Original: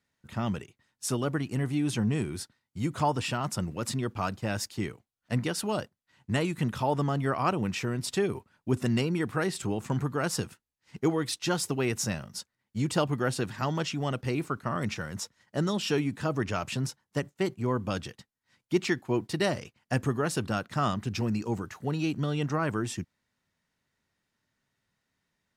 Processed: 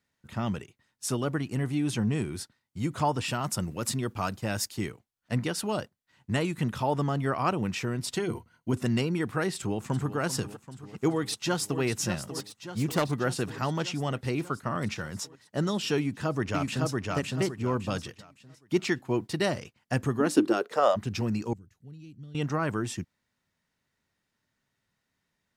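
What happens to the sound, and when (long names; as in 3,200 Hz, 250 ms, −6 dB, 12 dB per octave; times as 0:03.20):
0:03.28–0:04.90: high-shelf EQ 7,700 Hz +8.5 dB
0:08.15–0:08.74: EQ curve with evenly spaced ripples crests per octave 1.9, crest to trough 10 dB
0:09.54–0:10.17: delay throw 390 ms, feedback 70%, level −12.5 dB
0:11.11–0:11.81: delay throw 590 ms, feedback 70%, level −9.5 dB
0:12.39–0:13.15: phase distortion by the signal itself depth 0.14 ms
0:15.98–0:17.02: delay throw 560 ms, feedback 30%, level −1.5 dB
0:20.19–0:20.95: high-pass with resonance 230 Hz → 610 Hz, resonance Q 12
0:21.53–0:22.35: guitar amp tone stack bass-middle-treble 10-0-1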